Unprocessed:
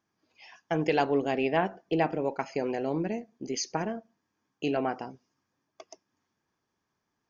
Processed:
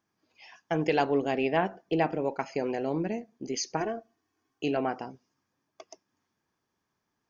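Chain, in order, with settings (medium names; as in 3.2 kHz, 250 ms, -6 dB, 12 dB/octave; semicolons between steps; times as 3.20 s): 3.80–4.64 s: comb 2.7 ms, depth 71%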